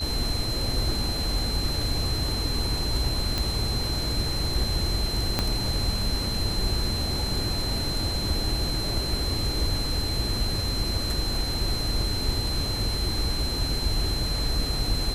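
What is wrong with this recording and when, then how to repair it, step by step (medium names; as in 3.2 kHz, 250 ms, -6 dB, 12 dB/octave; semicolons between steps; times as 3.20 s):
whine 4.1 kHz -30 dBFS
3.38 s: pop
5.39 s: pop -8 dBFS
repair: de-click; band-stop 4.1 kHz, Q 30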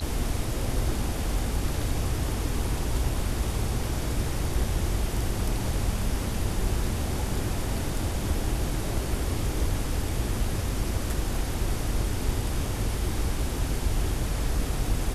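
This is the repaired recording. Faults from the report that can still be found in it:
5.39 s: pop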